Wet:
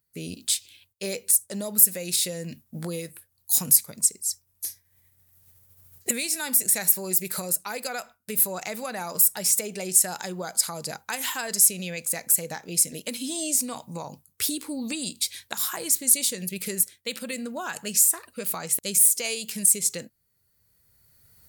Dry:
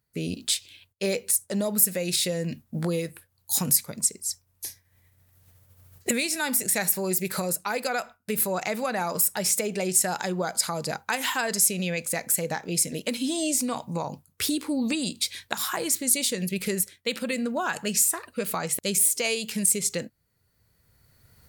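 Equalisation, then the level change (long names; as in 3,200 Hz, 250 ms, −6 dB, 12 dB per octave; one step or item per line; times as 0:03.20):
high-shelf EQ 5,500 Hz +11.5 dB
−5.5 dB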